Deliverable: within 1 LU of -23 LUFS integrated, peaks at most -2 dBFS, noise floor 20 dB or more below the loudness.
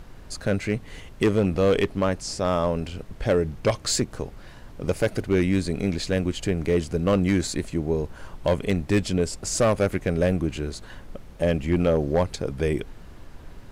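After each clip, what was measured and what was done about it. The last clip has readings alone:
clipped samples 1.1%; clipping level -14.0 dBFS; noise floor -44 dBFS; noise floor target -45 dBFS; loudness -25.0 LUFS; peak level -14.0 dBFS; loudness target -23.0 LUFS
-> clip repair -14 dBFS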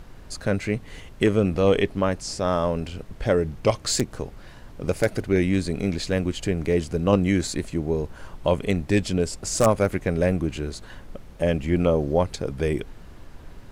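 clipped samples 0.0%; noise floor -44 dBFS; noise floor target -45 dBFS
-> noise print and reduce 6 dB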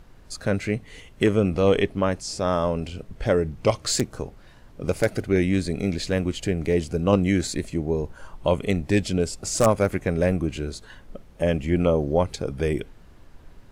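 noise floor -49 dBFS; loudness -24.5 LUFS; peak level -5.0 dBFS; loudness target -23.0 LUFS
-> trim +1.5 dB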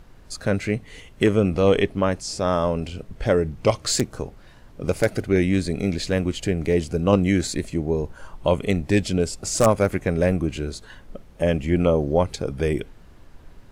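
loudness -23.0 LUFS; peak level -3.5 dBFS; noise floor -48 dBFS

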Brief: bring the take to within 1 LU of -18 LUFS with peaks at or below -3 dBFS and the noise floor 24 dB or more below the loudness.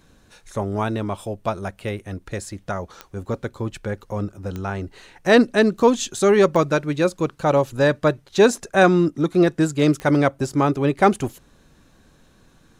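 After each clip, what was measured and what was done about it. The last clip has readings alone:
clicks found 4; loudness -20.5 LUFS; peak level -3.0 dBFS; loudness target -18.0 LUFS
-> de-click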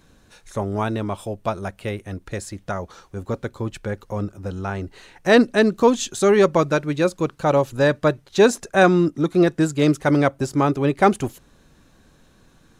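clicks found 0; loudness -20.5 LUFS; peak level -3.0 dBFS; loudness target -18.0 LUFS
-> trim +2.5 dB; peak limiter -3 dBFS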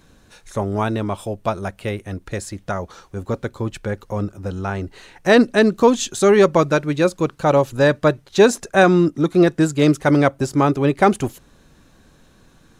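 loudness -18.5 LUFS; peak level -3.0 dBFS; noise floor -53 dBFS

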